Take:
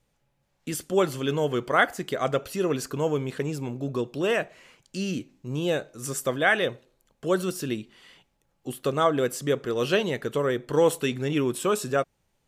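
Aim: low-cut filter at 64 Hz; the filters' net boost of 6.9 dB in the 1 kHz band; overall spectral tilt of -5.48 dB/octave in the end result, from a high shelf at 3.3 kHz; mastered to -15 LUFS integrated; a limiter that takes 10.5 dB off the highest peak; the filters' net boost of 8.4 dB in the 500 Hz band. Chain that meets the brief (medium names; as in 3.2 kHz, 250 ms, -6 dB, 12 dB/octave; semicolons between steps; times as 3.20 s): high-pass 64 Hz; peaking EQ 500 Hz +8.5 dB; peaking EQ 1 kHz +7.5 dB; treble shelf 3.3 kHz -8 dB; trim +8 dB; peak limiter -3 dBFS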